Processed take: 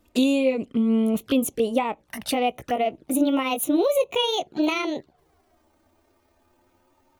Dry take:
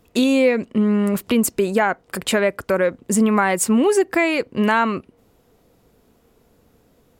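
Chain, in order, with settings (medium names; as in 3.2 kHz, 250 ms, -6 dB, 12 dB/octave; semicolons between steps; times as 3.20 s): pitch bend over the whole clip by +10.5 st starting unshifted; touch-sensitive flanger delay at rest 3.4 ms, full sweep at -19 dBFS; trim -2 dB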